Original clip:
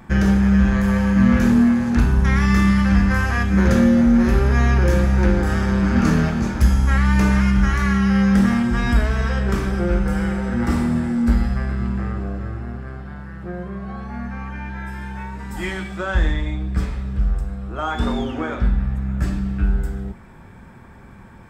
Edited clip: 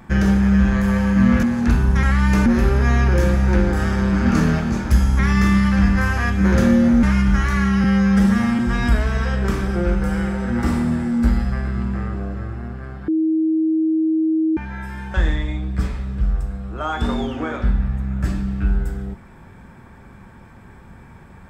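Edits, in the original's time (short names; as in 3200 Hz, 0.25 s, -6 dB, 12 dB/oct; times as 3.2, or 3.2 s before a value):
1.43–1.72 cut
2.32–4.16 swap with 6.89–7.32
8.13–8.63 stretch 1.5×
13.12–14.61 bleep 318 Hz -15 dBFS
15.18–16.12 cut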